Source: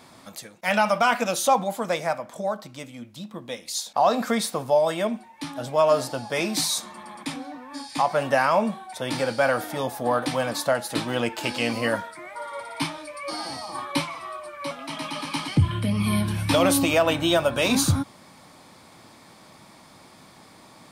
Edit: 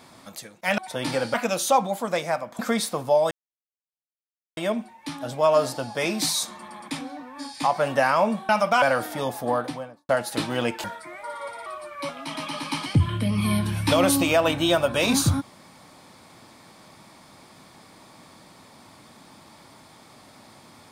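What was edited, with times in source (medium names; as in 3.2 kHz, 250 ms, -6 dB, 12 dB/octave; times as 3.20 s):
0.78–1.11 s: swap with 8.84–9.40 s
2.36–4.20 s: delete
4.92 s: insert silence 1.26 s
9.98–10.67 s: studio fade out
11.42–11.96 s: delete
12.78–14.28 s: delete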